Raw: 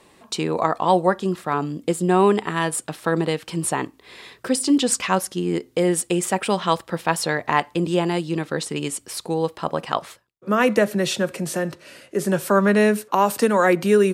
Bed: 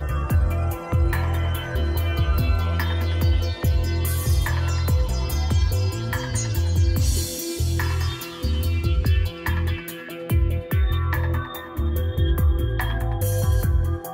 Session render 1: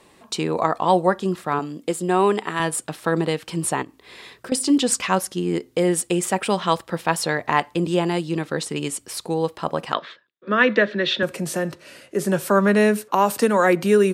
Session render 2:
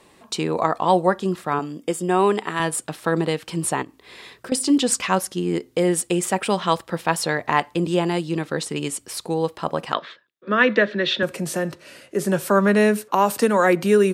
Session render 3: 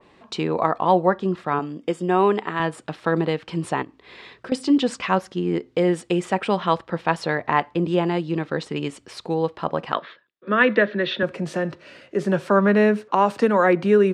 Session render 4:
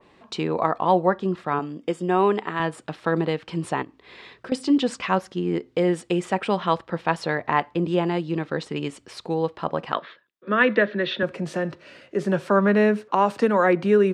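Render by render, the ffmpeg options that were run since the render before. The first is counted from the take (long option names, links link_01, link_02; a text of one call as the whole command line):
ffmpeg -i in.wav -filter_complex "[0:a]asettb=1/sr,asplit=3[link_01][link_02][link_03];[link_01]atrim=end=1.594[link_04];[link_02]atrim=start=1.59:end=2.6,asetpts=PTS-STARTPTS,afade=type=in:duration=0.004:curve=qsin,afade=type=out:start_time=1.006:duration=0.004:curve=qsin,highpass=frequency=290:poles=1[link_05];[link_03]atrim=start=2.596[link_06];[link_04][link_05]acrossfade=duration=0.004:curve1=hsin:curve2=qsin[link_07];[link_07][link_06]acrossfade=duration=0.004:curve1=qsin:curve2=hsin,asettb=1/sr,asplit=3[link_08][link_09][link_10];[link_08]atrim=end=3.824[link_11];[link_09]atrim=start=3.82:end=4.52,asetpts=PTS-STARTPTS,afade=type=in:duration=0.004:curve=qsin,afade=type=out:start_time=0.696:duration=0.004:curve=qsin,acompressor=threshold=-32dB:ratio=6:attack=3.2:release=140:knee=1:detection=peak[link_12];[link_10]atrim=start=4.516[link_13];[link_11][link_12]acrossfade=duration=0.004:curve1=hsin:curve2=qsin[link_14];[link_14][link_13]acrossfade=duration=0.004:curve1=qsin:curve2=hsin,asettb=1/sr,asplit=3[link_15][link_16][link_17];[link_15]atrim=end=9.934[link_18];[link_16]atrim=start=9.93:end=11.23,asetpts=PTS-STARTPTS,afade=type=in:duration=0.004:curve=qsin,afade=type=out:start_time=1.296:duration=0.004:curve=qsin,highpass=frequency=170:width=0.5412,highpass=frequency=170:width=1.3066,equalizer=frequency=180:width_type=q:width=4:gain=-5,equalizer=frequency=790:width_type=q:width=4:gain=-9,equalizer=frequency=1700:width_type=q:width=4:gain=9,equalizer=frequency=3600:width_type=q:width=4:gain=8,lowpass=frequency=4200:width=0.5412,lowpass=frequency=4200:width=1.3066[link_19];[link_17]atrim=start=11.226[link_20];[link_18][link_19]acrossfade=duration=0.004:curve1=hsin:curve2=qsin[link_21];[link_21][link_20]acrossfade=duration=0.004:curve1=qsin:curve2=hsin" out.wav
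ffmpeg -i in.wav -filter_complex "[0:a]asettb=1/sr,asplit=3[link_01][link_02][link_03];[link_01]atrim=end=1.504[link_04];[link_02]atrim=start=1.5:end=2.19,asetpts=PTS-STARTPTS,afade=type=in:duration=0.004:curve=qsin,afade=type=out:start_time=0.686:duration=0.004:curve=qsin,asuperstop=centerf=4100:order=12:qfactor=7.7[link_05];[link_03]atrim=start=2.186[link_06];[link_04][link_05]acrossfade=duration=0.004:curve1=hsin:curve2=qsin[link_07];[link_07][link_06]acrossfade=duration=0.004:curve1=qsin:curve2=hsin" out.wav
ffmpeg -i in.wav -af "lowpass=3800,adynamicequalizer=threshold=0.0158:dfrequency=2200:dqfactor=0.7:tfrequency=2200:tqfactor=0.7:attack=5:release=100:ratio=0.375:range=2.5:mode=cutabove:tftype=highshelf" out.wav
ffmpeg -i in.wav -af "volume=-1.5dB" out.wav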